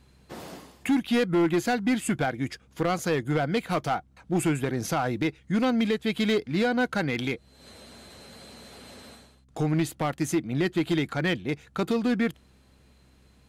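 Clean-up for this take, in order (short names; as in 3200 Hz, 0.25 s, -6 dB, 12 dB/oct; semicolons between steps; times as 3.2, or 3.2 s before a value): clip repair -18.5 dBFS; de-hum 65.4 Hz, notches 4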